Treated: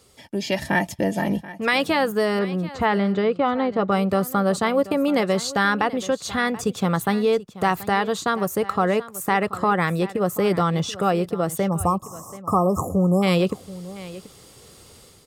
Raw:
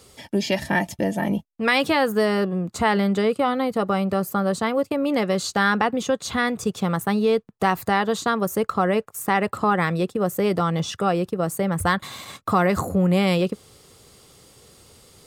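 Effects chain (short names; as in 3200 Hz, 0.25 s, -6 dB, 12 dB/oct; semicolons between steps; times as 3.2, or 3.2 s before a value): 11.69–13.23 spectral delete 1300–5100 Hz; dynamic EQ 220 Hz, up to -3 dB, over -35 dBFS, Q 7.7; AGC gain up to 8.5 dB; 2.39–3.92 air absorption 180 m; on a send: echo 0.732 s -17 dB; on the sum: gain -5.5 dB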